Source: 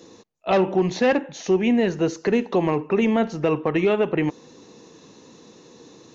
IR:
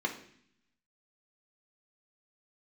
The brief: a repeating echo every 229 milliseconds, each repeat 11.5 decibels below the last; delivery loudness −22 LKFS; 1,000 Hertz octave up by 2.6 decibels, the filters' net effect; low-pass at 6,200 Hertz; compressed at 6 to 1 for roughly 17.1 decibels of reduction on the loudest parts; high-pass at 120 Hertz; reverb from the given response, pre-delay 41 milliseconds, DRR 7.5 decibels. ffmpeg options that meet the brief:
-filter_complex "[0:a]highpass=120,lowpass=6200,equalizer=frequency=1000:width_type=o:gain=3.5,acompressor=threshold=-34dB:ratio=6,aecho=1:1:229|458|687:0.266|0.0718|0.0194,asplit=2[link_01][link_02];[1:a]atrim=start_sample=2205,adelay=41[link_03];[link_02][link_03]afir=irnorm=-1:irlink=0,volume=-13.5dB[link_04];[link_01][link_04]amix=inputs=2:normalize=0,volume=14.5dB"

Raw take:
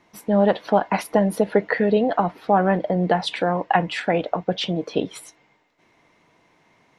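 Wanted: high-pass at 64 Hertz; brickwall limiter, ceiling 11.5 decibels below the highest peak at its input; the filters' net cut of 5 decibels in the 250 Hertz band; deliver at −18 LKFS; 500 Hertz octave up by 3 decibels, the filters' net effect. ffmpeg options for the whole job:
ffmpeg -i in.wav -af "highpass=64,equalizer=frequency=250:width_type=o:gain=-9,equalizer=frequency=500:width_type=o:gain=6,volume=7dB,alimiter=limit=-7dB:level=0:latency=1" out.wav

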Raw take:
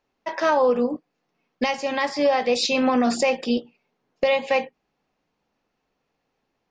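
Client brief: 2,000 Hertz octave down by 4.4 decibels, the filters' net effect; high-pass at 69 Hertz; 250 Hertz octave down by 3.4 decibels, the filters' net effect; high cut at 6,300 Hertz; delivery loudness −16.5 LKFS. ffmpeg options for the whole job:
ffmpeg -i in.wav -af "highpass=69,lowpass=6300,equalizer=frequency=250:width_type=o:gain=-3.5,equalizer=frequency=2000:width_type=o:gain=-5.5,volume=7.5dB" out.wav

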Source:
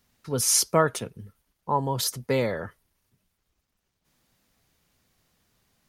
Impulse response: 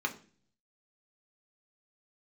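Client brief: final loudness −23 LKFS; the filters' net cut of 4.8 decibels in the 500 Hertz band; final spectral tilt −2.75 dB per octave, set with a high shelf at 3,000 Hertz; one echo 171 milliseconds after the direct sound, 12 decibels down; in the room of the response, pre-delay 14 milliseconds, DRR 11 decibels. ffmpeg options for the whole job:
-filter_complex "[0:a]equalizer=frequency=500:width_type=o:gain=-6,highshelf=frequency=3000:gain=4.5,aecho=1:1:171:0.251,asplit=2[link_01][link_02];[1:a]atrim=start_sample=2205,adelay=14[link_03];[link_02][link_03]afir=irnorm=-1:irlink=0,volume=-17dB[link_04];[link_01][link_04]amix=inputs=2:normalize=0,volume=-0.5dB"

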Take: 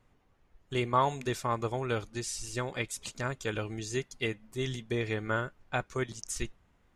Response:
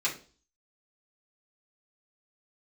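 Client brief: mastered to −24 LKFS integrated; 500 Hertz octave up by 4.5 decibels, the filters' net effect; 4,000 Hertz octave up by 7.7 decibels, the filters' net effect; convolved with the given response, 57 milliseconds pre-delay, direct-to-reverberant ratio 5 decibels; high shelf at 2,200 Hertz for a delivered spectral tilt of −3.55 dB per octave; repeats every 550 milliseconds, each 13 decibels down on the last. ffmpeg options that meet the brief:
-filter_complex "[0:a]equalizer=frequency=500:width_type=o:gain=5.5,highshelf=frequency=2200:gain=3.5,equalizer=frequency=4000:width_type=o:gain=6.5,aecho=1:1:550|1100|1650:0.224|0.0493|0.0108,asplit=2[link_01][link_02];[1:a]atrim=start_sample=2205,adelay=57[link_03];[link_02][link_03]afir=irnorm=-1:irlink=0,volume=-13dB[link_04];[link_01][link_04]amix=inputs=2:normalize=0,volume=5dB"

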